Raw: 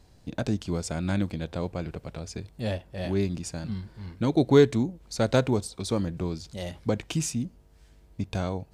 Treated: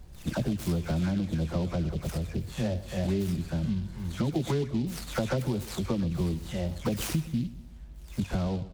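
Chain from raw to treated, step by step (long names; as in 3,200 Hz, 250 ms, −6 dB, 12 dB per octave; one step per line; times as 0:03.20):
every frequency bin delayed by itself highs early, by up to 248 ms
low-shelf EQ 220 Hz +12 dB
in parallel at −3 dB: brickwall limiter −16.5 dBFS, peak gain reduction 10.5 dB
on the sum: downward compressor 10 to 1, threshold −20 dBFS, peak gain reduction 11.5 dB
on a send: repeating echo 125 ms, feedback 44%, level −16.5 dB
on the sum: short delay modulated by noise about 3,300 Hz, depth 0.039 ms
level −4.5 dB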